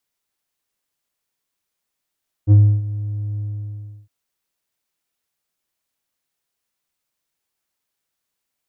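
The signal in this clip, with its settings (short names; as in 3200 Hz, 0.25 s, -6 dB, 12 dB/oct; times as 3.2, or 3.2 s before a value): synth note square G#2 12 dB/oct, low-pass 150 Hz, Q 1.2, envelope 1 oct, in 0.11 s, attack 45 ms, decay 0.30 s, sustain -17 dB, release 0.69 s, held 0.92 s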